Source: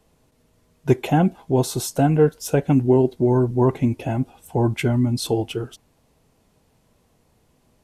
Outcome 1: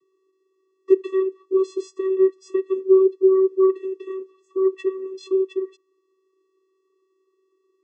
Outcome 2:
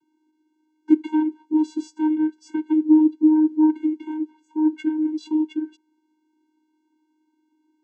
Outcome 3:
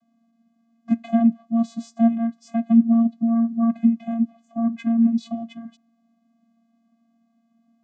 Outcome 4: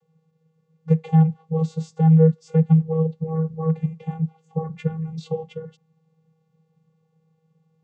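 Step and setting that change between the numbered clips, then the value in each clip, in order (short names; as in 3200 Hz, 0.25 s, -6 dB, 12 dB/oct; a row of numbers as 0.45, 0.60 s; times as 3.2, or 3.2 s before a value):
vocoder, frequency: 380, 310, 230, 160 Hz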